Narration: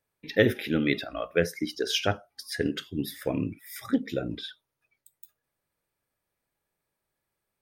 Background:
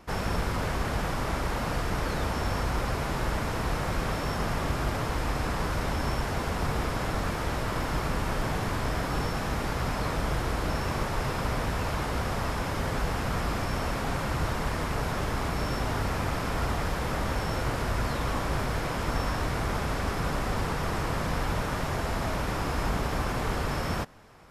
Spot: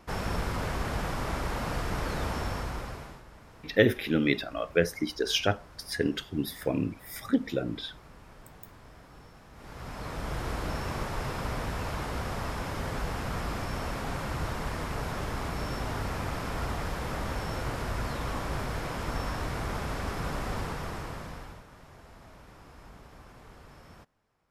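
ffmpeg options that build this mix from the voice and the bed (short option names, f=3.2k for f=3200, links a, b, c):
-filter_complex "[0:a]adelay=3400,volume=0dB[a];[1:a]volume=16dB,afade=t=out:st=2.34:d=0.89:silence=0.1,afade=t=in:st=9.53:d=0.97:silence=0.11885,afade=t=out:st=20.54:d=1.1:silence=0.125893[b];[a][b]amix=inputs=2:normalize=0"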